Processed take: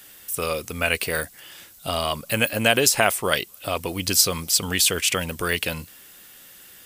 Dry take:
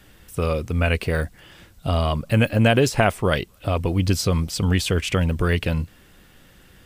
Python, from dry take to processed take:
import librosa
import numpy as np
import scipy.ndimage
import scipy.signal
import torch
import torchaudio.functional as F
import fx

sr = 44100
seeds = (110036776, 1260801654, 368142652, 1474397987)

y = fx.riaa(x, sr, side='recording')